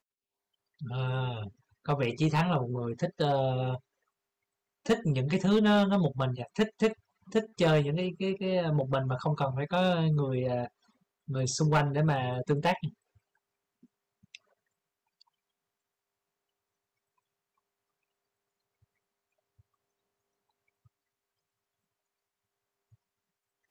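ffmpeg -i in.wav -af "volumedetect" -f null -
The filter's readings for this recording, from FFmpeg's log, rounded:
mean_volume: -32.1 dB
max_volume: -18.7 dB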